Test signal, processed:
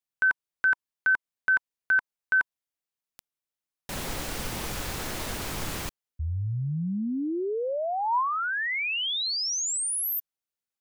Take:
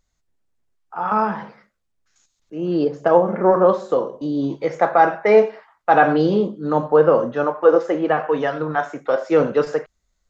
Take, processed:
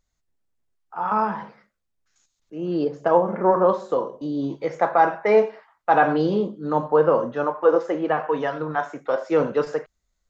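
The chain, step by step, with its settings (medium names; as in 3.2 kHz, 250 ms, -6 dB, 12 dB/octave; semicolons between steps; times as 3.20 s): dynamic bell 980 Hz, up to +6 dB, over -38 dBFS, Q 5.9; trim -4 dB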